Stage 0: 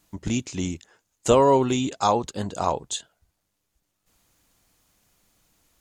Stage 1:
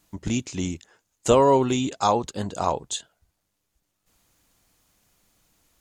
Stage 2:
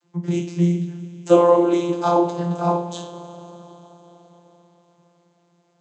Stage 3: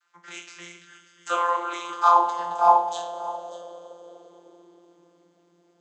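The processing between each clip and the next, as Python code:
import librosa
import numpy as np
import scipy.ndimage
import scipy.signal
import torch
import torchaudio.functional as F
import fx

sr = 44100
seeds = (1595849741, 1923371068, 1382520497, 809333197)

y1 = x
y2 = fx.rev_double_slope(y1, sr, seeds[0], early_s=0.44, late_s=4.8, knee_db=-19, drr_db=-0.5)
y2 = fx.vocoder(y2, sr, bands=32, carrier='saw', carrier_hz=173.0)
y2 = y2 * 10.0 ** (3.0 / 20.0)
y3 = fx.filter_sweep_highpass(y2, sr, from_hz=1400.0, to_hz=280.0, start_s=1.5, end_s=5.34, q=4.1)
y3 = y3 + 10.0 ** (-16.0 / 20.0) * np.pad(y3, (int(589 * sr / 1000.0), 0))[:len(y3)]
y3 = y3 * 10.0 ** (-2.0 / 20.0)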